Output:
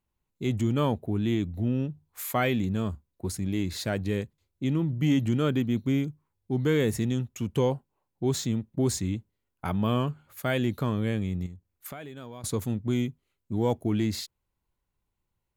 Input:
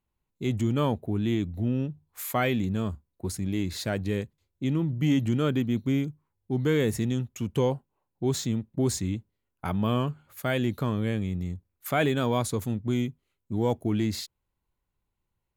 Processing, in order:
0:11.46–0:12.44: downward compressor 8 to 1, threshold −39 dBFS, peak gain reduction 18.5 dB

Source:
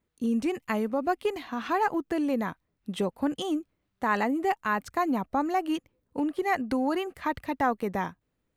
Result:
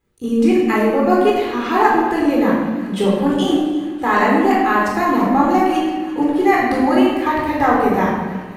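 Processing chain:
delay with a high-pass on its return 340 ms, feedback 79%, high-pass 1,600 Hz, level −17 dB
rectangular room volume 1,200 cubic metres, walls mixed, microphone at 4 metres
level +4.5 dB

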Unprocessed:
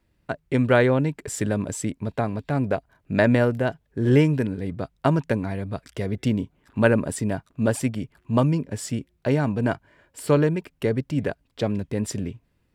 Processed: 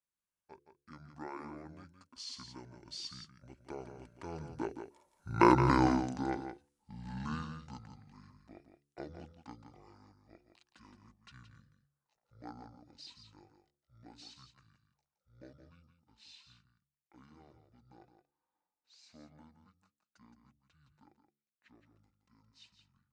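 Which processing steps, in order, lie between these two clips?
source passing by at 0:03.07, 23 m/s, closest 4.3 metres
change of speed 0.551×
RIAA equalisation recording
hum removal 71.51 Hz, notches 7
on a send: single-tap delay 169 ms −8.5 dB

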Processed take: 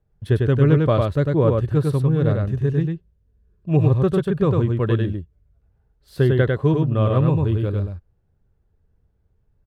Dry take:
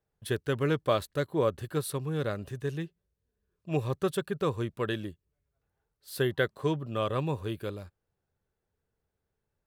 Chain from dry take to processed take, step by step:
RIAA equalisation playback
single-tap delay 100 ms −3 dB
level +4 dB

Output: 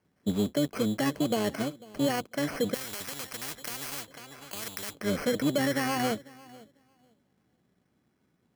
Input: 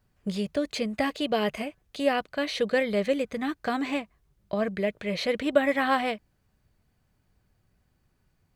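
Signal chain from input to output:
sub-octave generator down 1 octave, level +1 dB
floating-point word with a short mantissa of 4 bits
Chebyshev band-pass filter 230–2,400 Hz, order 2
brickwall limiter −20 dBFS, peak gain reduction 11 dB
low-shelf EQ 350 Hz +5.5 dB
feedback echo with a low-pass in the loop 496 ms, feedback 17%, low-pass 2,000 Hz, level −21 dB
decimation without filtering 12×
0:02.74–0:04.95: every bin compressed towards the loudest bin 4 to 1

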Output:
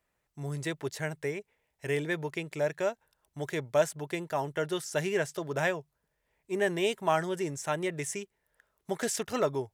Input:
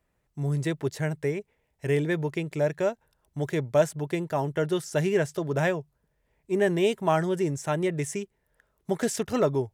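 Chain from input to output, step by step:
low-shelf EQ 460 Hz −10 dB

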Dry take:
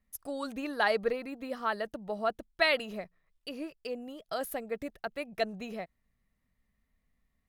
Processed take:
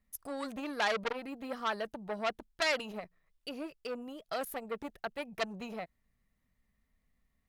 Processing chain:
saturating transformer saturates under 3,500 Hz

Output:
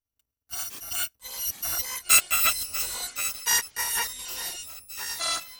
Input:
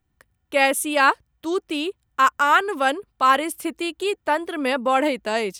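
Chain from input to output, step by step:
samples in bit-reversed order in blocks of 256 samples
source passing by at 0:02.00, 17 m/s, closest 4.4 metres
delay with pitch and tempo change per echo 500 ms, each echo −6 semitones, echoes 3, each echo −6 dB

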